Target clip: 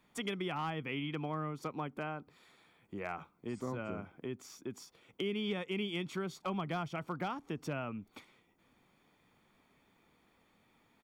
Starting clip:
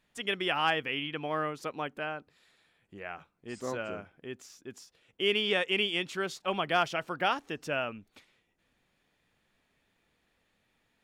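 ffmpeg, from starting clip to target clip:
ffmpeg -i in.wav -filter_complex "[0:a]lowpass=frequency=1500:poles=1,tiltshelf=frequency=970:gain=6.5,aecho=1:1:0.9:0.4,acrossover=split=190[link_01][link_02];[link_02]acompressor=threshold=-42dB:ratio=10[link_03];[link_01][link_03]amix=inputs=2:normalize=0,aemphasis=mode=production:type=riaa,asoftclip=type=hard:threshold=-35dB,volume=7.5dB" out.wav

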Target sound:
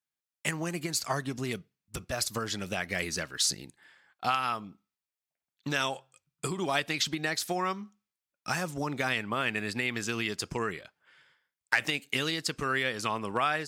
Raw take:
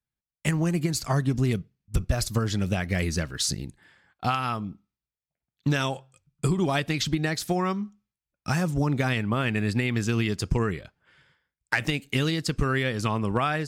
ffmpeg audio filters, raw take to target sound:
ffmpeg -i in.wav -af "highpass=frequency=660:poles=1" out.wav

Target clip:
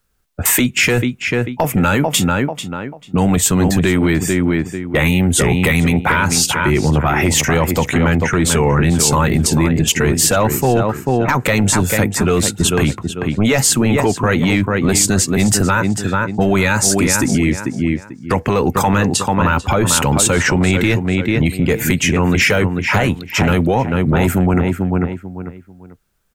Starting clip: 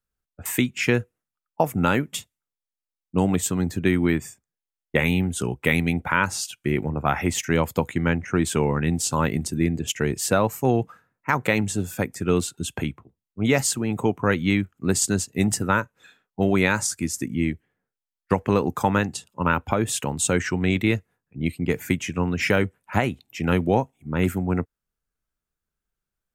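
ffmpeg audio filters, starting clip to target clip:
ffmpeg -i in.wav -filter_complex "[0:a]asplit=2[link_01][link_02];[link_02]adelay=442,lowpass=frequency=3500:poles=1,volume=-11dB,asplit=2[link_03][link_04];[link_04]adelay=442,lowpass=frequency=3500:poles=1,volume=0.26,asplit=2[link_05][link_06];[link_06]adelay=442,lowpass=frequency=3500:poles=1,volume=0.26[link_07];[link_01][link_03][link_05][link_07]amix=inputs=4:normalize=0,acompressor=threshold=-26dB:ratio=2.5,apsyclip=26.5dB,volume=-8dB" out.wav

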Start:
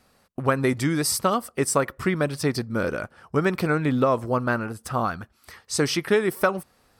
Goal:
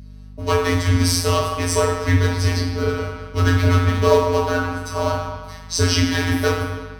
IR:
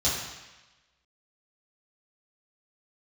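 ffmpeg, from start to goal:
-filter_complex "[0:a]bandreject=frequency=104.5:width_type=h:width=4,bandreject=frequency=209:width_type=h:width=4,bandreject=frequency=313.5:width_type=h:width=4,bandreject=frequency=418:width_type=h:width=4,bandreject=frequency=522.5:width_type=h:width=4,bandreject=frequency=627:width_type=h:width=4,bandreject=frequency=731.5:width_type=h:width=4,bandreject=frequency=836:width_type=h:width=4,bandreject=frequency=940.5:width_type=h:width=4,bandreject=frequency=1045:width_type=h:width=4,bandreject=frequency=1149.5:width_type=h:width=4,bandreject=frequency=1254:width_type=h:width=4,bandreject=frequency=1358.5:width_type=h:width=4,asplit=2[link_01][link_02];[link_02]acrusher=bits=4:dc=4:mix=0:aa=0.000001,volume=-5dB[link_03];[link_01][link_03]amix=inputs=2:normalize=0[link_04];[1:a]atrim=start_sample=2205,asetrate=38367,aresample=44100[link_05];[link_04][link_05]afir=irnorm=-1:irlink=0,afftfilt=real='hypot(re,im)*cos(PI*b)':imag='0':win_size=1024:overlap=0.75,afreqshift=-78,aeval=exprs='val(0)+0.0316*(sin(2*PI*50*n/s)+sin(2*PI*2*50*n/s)/2+sin(2*PI*3*50*n/s)/3+sin(2*PI*4*50*n/s)/4+sin(2*PI*5*50*n/s)/5)':channel_layout=same,volume=-7.5dB"

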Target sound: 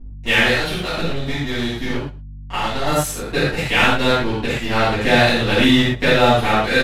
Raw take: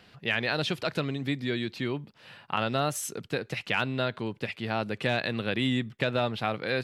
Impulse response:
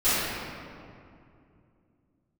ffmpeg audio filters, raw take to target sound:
-filter_complex "[0:a]asettb=1/sr,asplit=3[link_01][link_02][link_03];[link_01]atrim=end=0.474[link_04];[link_02]atrim=start=0.47:end=2.86,asetpts=PTS-STARTPTS,afade=type=in:duration=0.004:curve=qsin,afade=type=out:start_time=2.386:duration=0.004:curve=qsin,acompressor=threshold=-30dB:ratio=6[link_05];[link_03]atrim=start=2.856[link_06];[link_04][link_05]acrossfade=duration=0.004:curve1=hsin:curve2=qsin[link_07];[link_07][link_06]acrossfade=duration=0.004:curve1=qsin:curve2=hsin,aeval=exprs='sgn(val(0))*max(abs(val(0))-0.0141,0)':channel_layout=same,aeval=exprs='val(0)+0.00398*(sin(2*PI*50*n/s)+sin(2*PI*2*50*n/s)/2+sin(2*PI*3*50*n/s)/3+sin(2*PI*4*50*n/s)/4+sin(2*PI*5*50*n/s)/5)':channel_layout=same,aecho=1:1:113:0.0841[link_08];[1:a]atrim=start_sample=2205,atrim=end_sample=4410,asetrate=30429,aresample=44100[link_09];[link_08][link_09]afir=irnorm=-1:irlink=0"

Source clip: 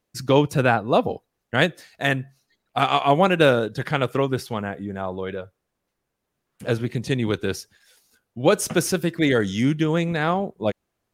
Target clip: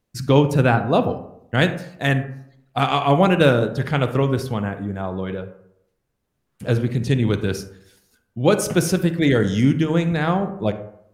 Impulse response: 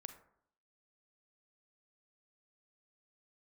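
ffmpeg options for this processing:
-filter_complex "[0:a]bandreject=frequency=77.93:width_type=h:width=4,bandreject=frequency=155.86:width_type=h:width=4,bandreject=frequency=233.79:width_type=h:width=4,bandreject=frequency=311.72:width_type=h:width=4,bandreject=frequency=389.65:width_type=h:width=4,bandreject=frequency=467.58:width_type=h:width=4,bandreject=frequency=545.51:width_type=h:width=4,bandreject=frequency=623.44:width_type=h:width=4,bandreject=frequency=701.37:width_type=h:width=4,bandreject=frequency=779.3:width_type=h:width=4,bandreject=frequency=857.23:width_type=h:width=4,bandreject=frequency=935.16:width_type=h:width=4,bandreject=frequency=1013.09:width_type=h:width=4,bandreject=frequency=1091.02:width_type=h:width=4,bandreject=frequency=1168.95:width_type=h:width=4,bandreject=frequency=1246.88:width_type=h:width=4,bandreject=frequency=1324.81:width_type=h:width=4,bandreject=frequency=1402.74:width_type=h:width=4,bandreject=frequency=1480.67:width_type=h:width=4,bandreject=frequency=1558.6:width_type=h:width=4,bandreject=frequency=1636.53:width_type=h:width=4,bandreject=frequency=1714.46:width_type=h:width=4,bandreject=frequency=1792.39:width_type=h:width=4,bandreject=frequency=1870.32:width_type=h:width=4,bandreject=frequency=1948.25:width_type=h:width=4,bandreject=frequency=2026.18:width_type=h:width=4,bandreject=frequency=2104.11:width_type=h:width=4,bandreject=frequency=2182.04:width_type=h:width=4,bandreject=frequency=2259.97:width_type=h:width=4,bandreject=frequency=2337.9:width_type=h:width=4,bandreject=frequency=2415.83:width_type=h:width=4,bandreject=frequency=2493.76:width_type=h:width=4,bandreject=frequency=2571.69:width_type=h:width=4,bandreject=frequency=2649.62:width_type=h:width=4,bandreject=frequency=2727.55:width_type=h:width=4,bandreject=frequency=2805.48:width_type=h:width=4,bandreject=frequency=2883.41:width_type=h:width=4,bandreject=frequency=2961.34:width_type=h:width=4,bandreject=frequency=3039.27:width_type=h:width=4,asplit=2[link_01][link_02];[1:a]atrim=start_sample=2205,asetrate=39690,aresample=44100,lowshelf=frequency=240:gain=12[link_03];[link_02][link_03]afir=irnorm=-1:irlink=0,volume=9.5dB[link_04];[link_01][link_04]amix=inputs=2:normalize=0,volume=-8.5dB"

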